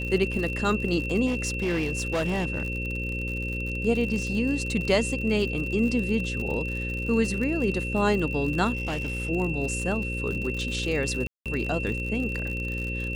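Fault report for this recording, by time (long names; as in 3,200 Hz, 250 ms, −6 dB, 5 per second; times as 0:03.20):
mains buzz 60 Hz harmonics 9 −32 dBFS
surface crackle 64 per second −31 dBFS
whistle 2,700 Hz −32 dBFS
0:01.26–0:03.73: clipping −22 dBFS
0:08.75–0:09.30: clipping −25 dBFS
0:11.27–0:11.46: drop-out 187 ms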